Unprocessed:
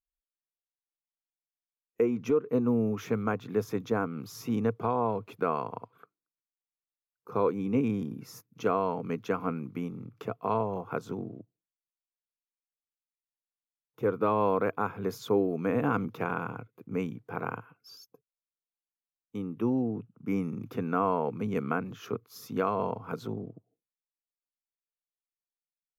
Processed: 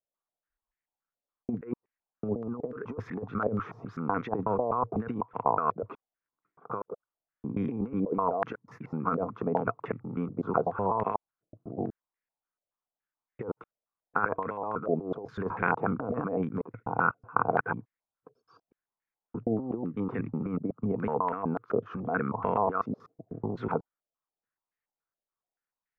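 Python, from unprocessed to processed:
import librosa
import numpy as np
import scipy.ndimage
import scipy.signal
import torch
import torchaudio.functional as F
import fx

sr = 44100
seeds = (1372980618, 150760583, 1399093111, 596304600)

y = fx.block_reorder(x, sr, ms=124.0, group=6)
y = fx.over_compress(y, sr, threshold_db=-31.0, ratio=-0.5)
y = fx.filter_held_lowpass(y, sr, hz=7.0, low_hz=610.0, high_hz=1900.0)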